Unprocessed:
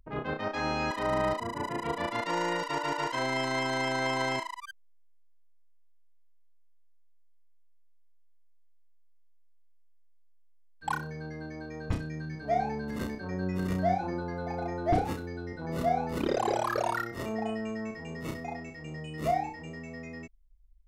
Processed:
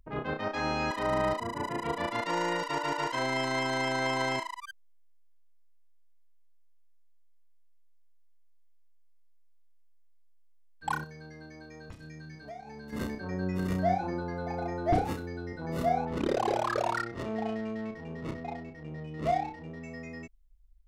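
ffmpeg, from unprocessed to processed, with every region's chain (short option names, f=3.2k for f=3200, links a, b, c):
-filter_complex "[0:a]asettb=1/sr,asplit=3[a][b][c];[a]atrim=end=11.044[d];[b]atrim=start=11.04:end=12.93,asetpts=PTS-STARTPTS,afade=t=in:d=0.004:c=qsin,afade=t=out:st=1.886:d=0.004:c=qsin,agate=range=-8dB:threshold=-29dB:ratio=16:release=100:detection=peak,highshelf=f=2.4k:g=9,acompressor=threshold=-40dB:ratio=12:attack=3.2:release=140:knee=1:detection=peak[e];[c]atrim=start=12.926[f];[d][e]acrossfade=d=0.004:c1=hsin:c2=qsin[g];[g][f]acrossfade=d=0.004:c1=qsin:c2=hsin,asettb=1/sr,asplit=3[h][i][j];[h]atrim=end=16.054[k];[i]atrim=start=16.05:end=19.83,asetpts=PTS-STARTPTS,afade=t=in:d=0.004:c=qsin,afade=t=out:st=3.776:d=0.004:c=qsin,adynamicsmooth=sensitivity=6.5:basefreq=1.1k,adynamicequalizer=threshold=0.00708:dfrequency=2600:dqfactor=0.7:tfrequency=2600:tqfactor=0.7:attack=5:release=100:ratio=0.375:range=1.5:mode=boostabove:tftype=highshelf[l];[j]atrim=start=19.826[m];[k][l]acrossfade=d=0.004:c1=hsin:c2=qsin[n];[n][m]acrossfade=d=0.004:c1=qsin:c2=hsin"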